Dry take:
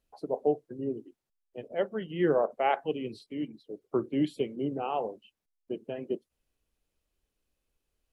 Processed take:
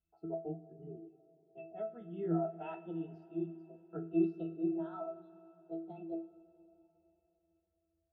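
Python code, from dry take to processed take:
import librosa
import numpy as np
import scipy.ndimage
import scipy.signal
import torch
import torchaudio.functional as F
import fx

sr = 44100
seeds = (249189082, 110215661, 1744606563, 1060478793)

y = fx.pitch_glide(x, sr, semitones=7.0, runs='starting unshifted')
y = fx.octave_resonator(y, sr, note='E', decay_s=0.34)
y = fx.rev_double_slope(y, sr, seeds[0], early_s=0.23, late_s=3.6, knee_db=-18, drr_db=8.0)
y = F.gain(torch.from_numpy(y), 8.5).numpy()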